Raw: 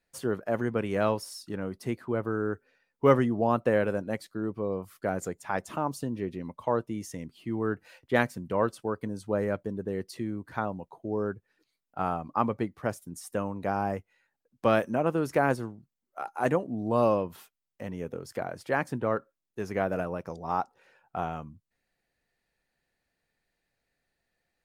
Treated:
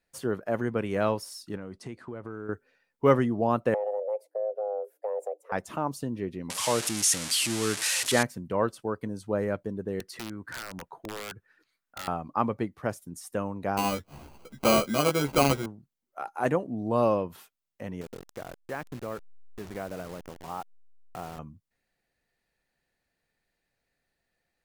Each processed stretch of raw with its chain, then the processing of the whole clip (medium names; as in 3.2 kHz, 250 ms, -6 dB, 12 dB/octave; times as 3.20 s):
1.56–2.49 s: low-pass 9.4 kHz 24 dB/octave + compression, threshold -34 dBFS
3.74–5.52 s: FFT filter 110 Hz 0 dB, 220 Hz +13 dB, 620 Hz -11 dB, 1.2 kHz -19 dB, 3.9 kHz -24 dB, 9.7 kHz -12 dB + compression 3:1, threshold -28 dBFS + frequency shift +310 Hz
6.50–8.23 s: zero-crossing glitches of -14 dBFS + low-pass 10 kHz 24 dB/octave
10.00–12.08 s: peaking EQ 1.5 kHz +12 dB 1 oct + compression 4:1, threshold -34 dBFS + integer overflow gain 30 dB
13.77–15.66 s: upward compressor, threshold -28 dBFS + sample-rate reducer 1.8 kHz + doubling 14 ms -3.5 dB
18.01–21.39 s: send-on-delta sampling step -35 dBFS + compression 1.5:1, threshold -44 dBFS
whole clip: none